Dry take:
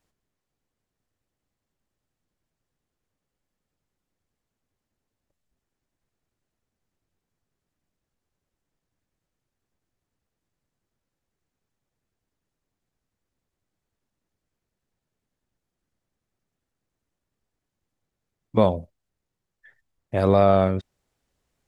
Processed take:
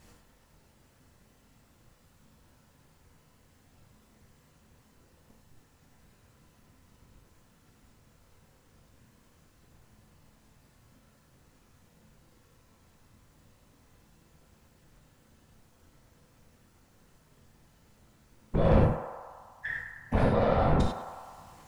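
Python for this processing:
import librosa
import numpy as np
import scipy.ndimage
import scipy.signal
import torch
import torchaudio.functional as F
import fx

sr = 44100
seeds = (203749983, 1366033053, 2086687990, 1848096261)

y = fx.peak_eq(x, sr, hz=96.0, db=6.5, octaves=1.3)
y = fx.over_compress(y, sr, threshold_db=-27.0, ratio=-1.0)
y = 10.0 ** (-29.0 / 20.0) * np.tanh(y / 10.0 ** (-29.0 / 20.0))
y = fx.whisperise(y, sr, seeds[0])
y = fx.echo_banded(y, sr, ms=103, feedback_pct=76, hz=1000.0, wet_db=-6.5)
y = fx.rev_gated(y, sr, seeds[1], gate_ms=120, shape='flat', drr_db=-1.5)
y = F.gain(torch.from_numpy(y), 7.0).numpy()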